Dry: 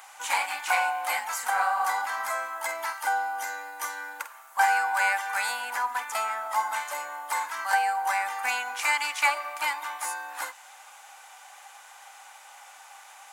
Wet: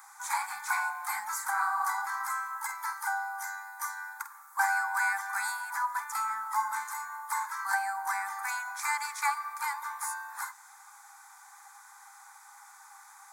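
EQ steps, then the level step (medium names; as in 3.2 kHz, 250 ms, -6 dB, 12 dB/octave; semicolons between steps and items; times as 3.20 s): Chebyshev band-stop 220–800 Hz, order 5; static phaser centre 1.2 kHz, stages 4; -1.0 dB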